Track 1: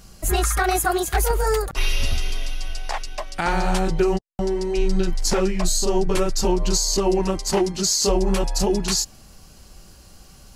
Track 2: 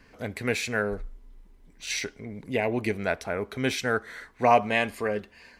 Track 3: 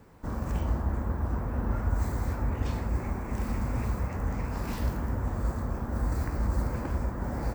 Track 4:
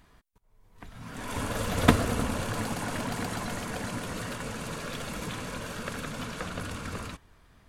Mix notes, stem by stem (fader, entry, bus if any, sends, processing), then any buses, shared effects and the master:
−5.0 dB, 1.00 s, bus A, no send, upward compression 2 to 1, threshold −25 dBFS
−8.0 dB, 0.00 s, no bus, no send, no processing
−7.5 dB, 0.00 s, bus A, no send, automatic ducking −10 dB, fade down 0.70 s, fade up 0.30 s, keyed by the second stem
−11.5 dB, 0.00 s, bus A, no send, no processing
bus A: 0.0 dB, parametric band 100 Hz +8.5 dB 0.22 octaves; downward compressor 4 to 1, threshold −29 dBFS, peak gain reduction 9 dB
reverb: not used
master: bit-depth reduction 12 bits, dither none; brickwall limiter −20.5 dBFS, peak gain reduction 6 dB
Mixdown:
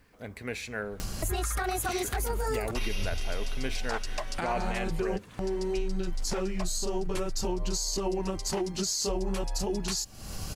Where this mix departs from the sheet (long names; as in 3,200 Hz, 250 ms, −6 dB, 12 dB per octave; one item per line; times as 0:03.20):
stem 1 −5.0 dB → +2.0 dB
stem 3 −7.5 dB → −18.5 dB